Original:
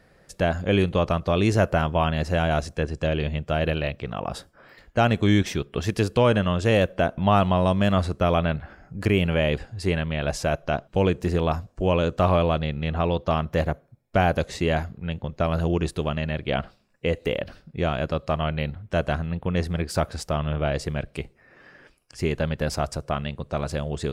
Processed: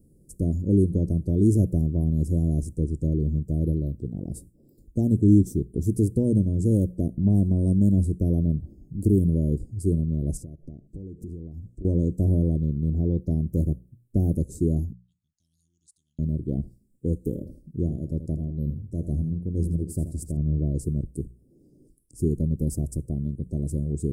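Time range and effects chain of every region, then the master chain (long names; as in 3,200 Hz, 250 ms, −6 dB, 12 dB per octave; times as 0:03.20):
0:10.37–0:11.85: high-shelf EQ 6,200 Hz −11.5 dB + downward compressor 10 to 1, threshold −35 dBFS + one half of a high-frequency compander encoder only
0:14.93–0:16.19: elliptic high-pass filter 2,200 Hz, stop band 50 dB + high-frequency loss of the air 120 metres
0:17.18–0:20.37: shaped tremolo triangle 2.1 Hz, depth 45% + repeating echo 81 ms, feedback 29%, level −11 dB
whole clip: elliptic band-stop filter 330–8,600 Hz, stop band 70 dB; mains-hum notches 60/120/180 Hz; level +4 dB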